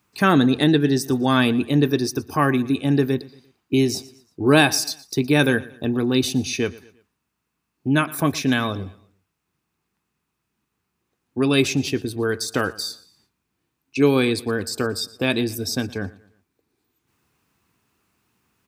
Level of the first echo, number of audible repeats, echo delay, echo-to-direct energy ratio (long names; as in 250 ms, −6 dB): −20.5 dB, 2, 116 ms, −20.0 dB